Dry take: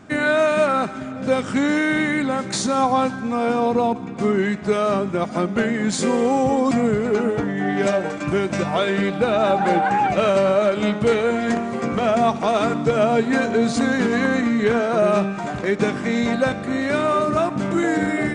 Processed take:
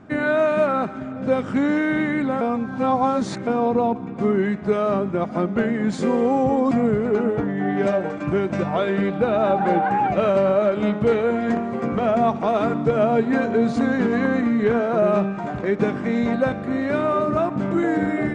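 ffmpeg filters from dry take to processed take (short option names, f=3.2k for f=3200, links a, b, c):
-filter_complex "[0:a]asplit=3[a][b][c];[a]atrim=end=2.412[d];[b]atrim=start=2.408:end=3.472,asetpts=PTS-STARTPTS,areverse[e];[c]atrim=start=3.468[f];[d][e]acrossfade=d=0.004:c1=hsin:c2=hsin[g];[g][f]acrossfade=d=0.004:c1=hsin:c2=hsin,lowpass=f=1.3k:p=1"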